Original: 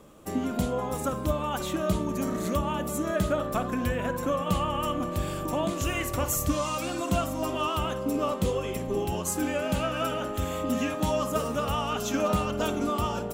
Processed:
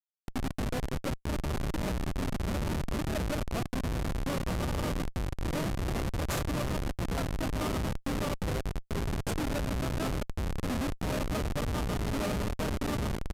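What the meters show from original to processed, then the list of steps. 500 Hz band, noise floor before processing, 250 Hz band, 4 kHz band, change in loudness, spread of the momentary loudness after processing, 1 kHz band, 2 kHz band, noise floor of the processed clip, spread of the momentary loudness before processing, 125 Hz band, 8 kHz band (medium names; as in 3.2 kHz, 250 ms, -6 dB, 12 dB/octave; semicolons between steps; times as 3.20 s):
-7.5 dB, -34 dBFS, -4.5 dB, -4.5 dB, -4.5 dB, 3 LU, -8.5 dB, -3.5 dB, -55 dBFS, 3 LU, 0.0 dB, -7.5 dB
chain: Schmitt trigger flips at -24.5 dBFS; resampled via 32 kHz; trim -2 dB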